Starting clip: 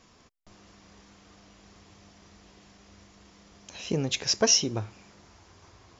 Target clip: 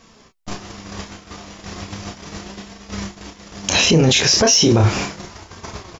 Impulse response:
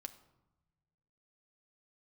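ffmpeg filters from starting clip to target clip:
-filter_complex "[0:a]agate=range=-22dB:threshold=-52dB:ratio=16:detection=peak,acontrast=46,flanger=delay=4.4:depth=8.3:regen=61:speed=0.36:shape=sinusoidal,asplit=2[a][b];[b]adelay=31,volume=-6dB[c];[a][c]amix=inputs=2:normalize=0,alimiter=level_in=34dB:limit=-1dB:release=50:level=0:latency=1,volume=-5dB"

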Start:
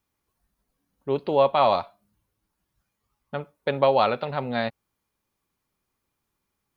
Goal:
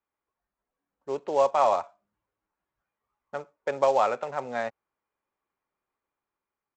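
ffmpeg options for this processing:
-filter_complex "[0:a]acrossover=split=360 2400:gain=0.2 1 0.0708[a][b][c];[a][b][c]amix=inputs=3:normalize=0,dynaudnorm=f=460:g=5:m=3.5dB,aresample=16000,acrusher=bits=6:mode=log:mix=0:aa=0.000001,aresample=44100,volume=-4.5dB"

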